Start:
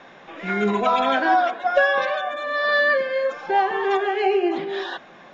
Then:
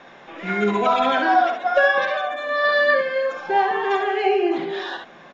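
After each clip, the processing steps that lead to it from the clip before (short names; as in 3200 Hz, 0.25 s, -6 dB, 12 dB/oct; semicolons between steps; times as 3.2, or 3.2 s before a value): early reflections 58 ms -10 dB, 70 ms -8 dB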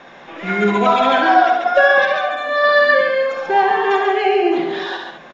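echo 0.138 s -6 dB; gain +4 dB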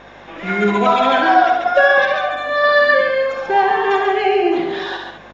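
buzz 50 Hz, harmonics 19, -48 dBFS -2 dB/oct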